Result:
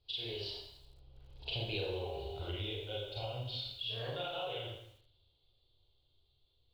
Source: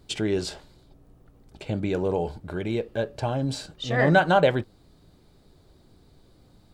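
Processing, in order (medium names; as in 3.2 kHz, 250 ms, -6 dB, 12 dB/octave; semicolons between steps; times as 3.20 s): Doppler pass-by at 1.83 s, 28 m/s, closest 2.3 m; FFT filter 120 Hz 0 dB, 190 Hz -25 dB, 410 Hz -6 dB, 860 Hz -5 dB, 1.8 kHz -13 dB, 3.1 kHz +12 dB, 4.6 kHz +5 dB, 6.6 kHz -26 dB; Schroeder reverb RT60 0.66 s, combs from 31 ms, DRR -7 dB; compression 12:1, threshold -45 dBFS, peak gain reduction 23 dB; bit-crushed delay 83 ms, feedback 55%, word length 11-bit, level -14.5 dB; trim +9.5 dB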